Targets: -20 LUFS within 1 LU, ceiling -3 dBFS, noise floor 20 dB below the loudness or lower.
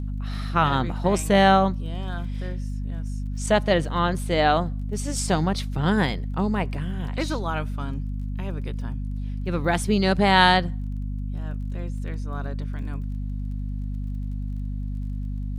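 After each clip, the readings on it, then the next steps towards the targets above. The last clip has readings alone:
tick rate 27 per s; hum 50 Hz; highest harmonic 250 Hz; hum level -26 dBFS; loudness -25.0 LUFS; peak level -3.5 dBFS; loudness target -20.0 LUFS
-> de-click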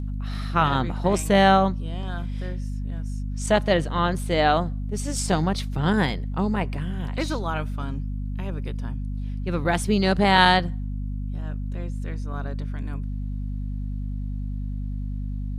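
tick rate 0.064 per s; hum 50 Hz; highest harmonic 250 Hz; hum level -26 dBFS
-> de-hum 50 Hz, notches 5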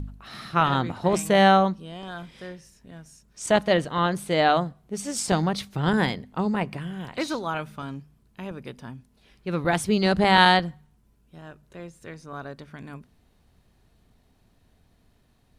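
hum not found; loudness -23.0 LUFS; peak level -4.0 dBFS; loudness target -20.0 LUFS
-> trim +3 dB; peak limiter -3 dBFS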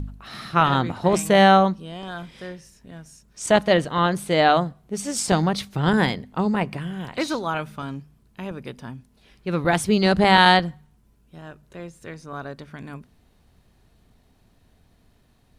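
loudness -20.5 LUFS; peak level -3.0 dBFS; noise floor -60 dBFS

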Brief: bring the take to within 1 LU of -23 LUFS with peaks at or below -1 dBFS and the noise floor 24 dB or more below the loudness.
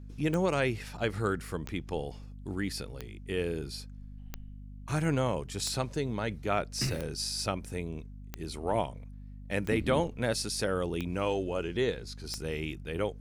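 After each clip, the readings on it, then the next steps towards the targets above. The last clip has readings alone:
clicks found 10; hum 50 Hz; highest harmonic 250 Hz; hum level -43 dBFS; loudness -33.0 LUFS; peak level -15.5 dBFS; loudness target -23.0 LUFS
-> de-click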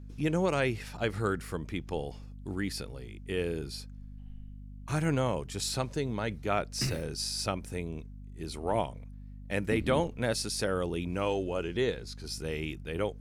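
clicks found 0; hum 50 Hz; highest harmonic 250 Hz; hum level -43 dBFS
-> de-hum 50 Hz, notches 5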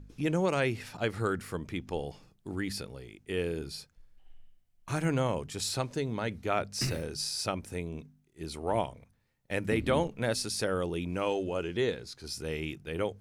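hum not found; loudness -33.0 LUFS; peak level -16.0 dBFS; loudness target -23.0 LUFS
-> trim +10 dB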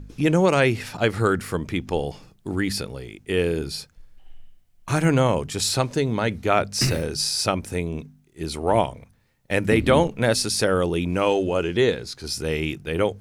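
loudness -23.0 LUFS; peak level -6.0 dBFS; noise floor -59 dBFS

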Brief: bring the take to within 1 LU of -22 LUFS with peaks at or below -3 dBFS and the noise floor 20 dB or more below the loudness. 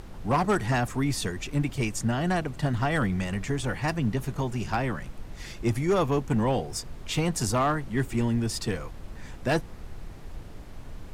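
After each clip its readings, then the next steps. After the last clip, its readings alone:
clipped samples 0.6%; clipping level -17.5 dBFS; noise floor -42 dBFS; noise floor target -48 dBFS; loudness -28.0 LUFS; peak level -17.5 dBFS; loudness target -22.0 LUFS
-> clip repair -17.5 dBFS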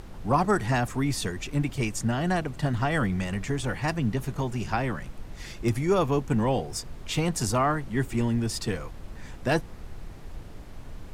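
clipped samples 0.0%; noise floor -42 dBFS; noise floor target -48 dBFS
-> noise print and reduce 6 dB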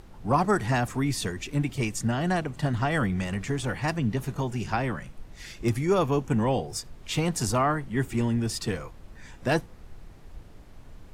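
noise floor -48 dBFS; loudness -27.5 LUFS; peak level -10.0 dBFS; loudness target -22.0 LUFS
-> trim +5.5 dB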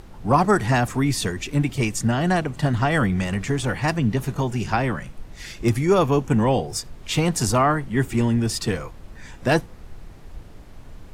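loudness -22.0 LUFS; peak level -4.5 dBFS; noise floor -43 dBFS

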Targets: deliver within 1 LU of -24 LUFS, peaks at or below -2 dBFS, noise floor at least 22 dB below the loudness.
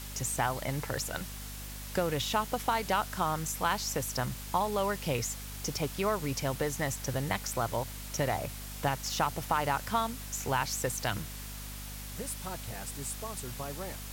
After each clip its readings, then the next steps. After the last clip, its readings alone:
hum 50 Hz; highest harmonic 250 Hz; hum level -41 dBFS; noise floor -42 dBFS; noise floor target -55 dBFS; loudness -33.0 LUFS; peak level -14.5 dBFS; loudness target -24.0 LUFS
-> hum notches 50/100/150/200/250 Hz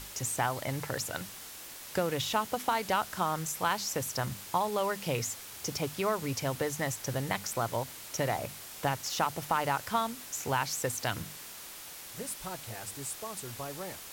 hum not found; noise floor -46 dBFS; noise floor target -56 dBFS
-> noise print and reduce 10 dB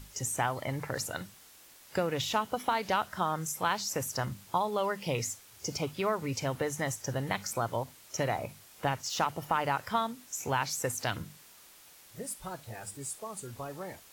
noise floor -56 dBFS; loudness -33.5 LUFS; peak level -15.5 dBFS; loudness target -24.0 LUFS
-> trim +9.5 dB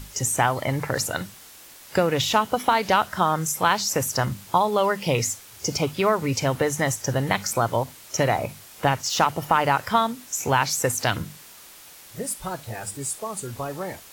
loudness -24.0 LUFS; peak level -6.0 dBFS; noise floor -46 dBFS

